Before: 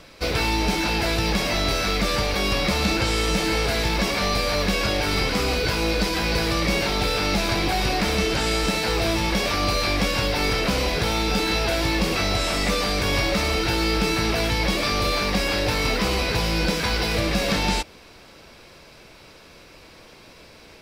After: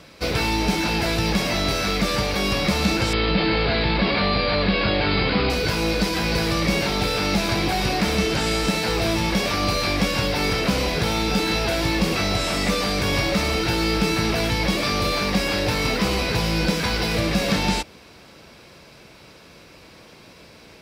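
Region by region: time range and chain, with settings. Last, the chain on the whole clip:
0:03.13–0:05.50: Butterworth low-pass 4,800 Hz 96 dB per octave + envelope flattener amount 50%
whole clip: high-pass filter 48 Hz; parametric band 170 Hz +4 dB 1.3 octaves

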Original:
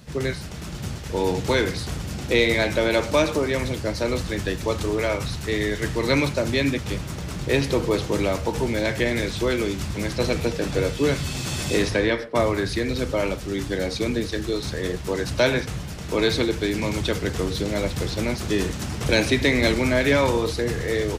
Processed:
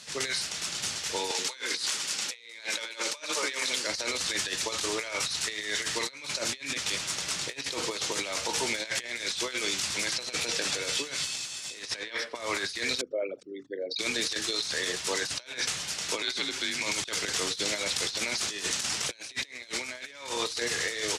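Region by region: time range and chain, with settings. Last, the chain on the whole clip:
0:01.31–0:03.87: high-pass filter 250 Hz + notch filter 700 Hz, Q 6.5 + multiband delay without the direct sound highs, lows 70 ms, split 410 Hz
0:13.01–0:13.99: spectral envelope exaggerated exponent 3 + high-pass filter 330 Hz
0:16.22–0:16.81: downward compressor 4 to 1, threshold −25 dBFS + high-shelf EQ 6,900 Hz −3.5 dB + frequency shifter −69 Hz
whole clip: meter weighting curve ITU-R 468; compressor whose output falls as the input rises −27 dBFS, ratio −0.5; level −5 dB

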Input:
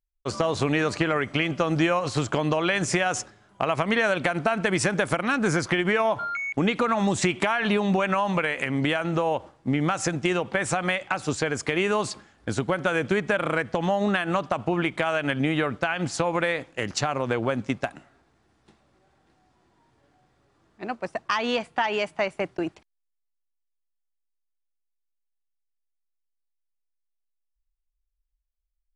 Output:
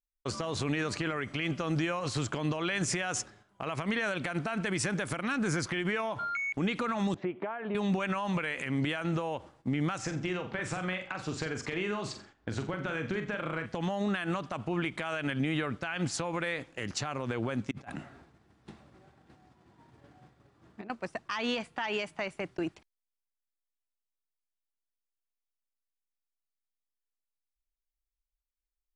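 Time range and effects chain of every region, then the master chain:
0:07.14–0:07.75: resonant band-pass 510 Hz, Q 1.2 + high-frequency loss of the air 280 metres
0:09.98–0:13.66: downward compressor 2.5 to 1, threshold −27 dBFS + high-frequency loss of the air 97 metres + flutter between parallel walls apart 7.5 metres, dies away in 0.34 s
0:17.71–0:20.90: high-pass filter 170 Hz 6 dB per octave + bass and treble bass +10 dB, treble −4 dB + compressor whose output falls as the input rises −42 dBFS
whole clip: noise gate −53 dBFS, range −8 dB; brickwall limiter −18.5 dBFS; dynamic equaliser 670 Hz, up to −5 dB, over −41 dBFS, Q 0.92; level −2.5 dB

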